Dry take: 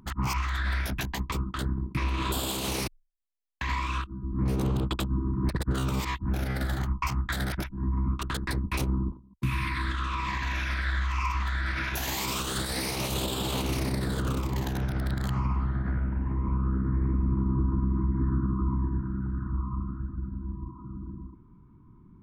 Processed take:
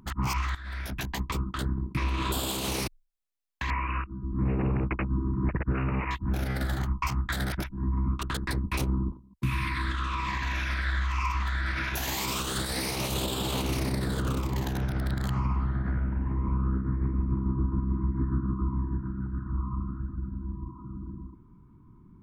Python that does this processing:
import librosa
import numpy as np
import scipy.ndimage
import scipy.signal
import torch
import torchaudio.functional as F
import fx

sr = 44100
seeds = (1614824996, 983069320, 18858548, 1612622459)

y = fx.resample_bad(x, sr, factor=8, down='none', up='filtered', at=(3.7, 6.11))
y = fx.tremolo(y, sr, hz=6.9, depth=0.41, at=(16.76, 19.55))
y = fx.edit(y, sr, fx.fade_in_from(start_s=0.55, length_s=0.6, floor_db=-16.5), tone=tone)